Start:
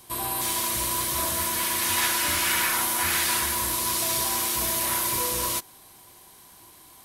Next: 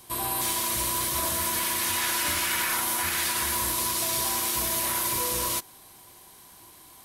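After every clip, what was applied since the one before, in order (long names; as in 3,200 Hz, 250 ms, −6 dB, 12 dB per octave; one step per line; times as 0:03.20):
brickwall limiter −17 dBFS, peak gain reduction 6 dB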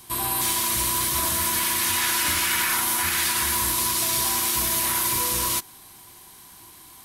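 parametric band 550 Hz −7.5 dB 0.77 octaves
level +4 dB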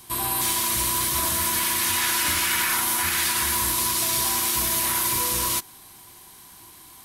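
no processing that can be heard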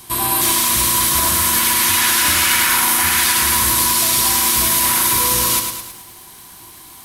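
feedback echo at a low word length 107 ms, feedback 55%, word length 8 bits, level −6 dB
level +7 dB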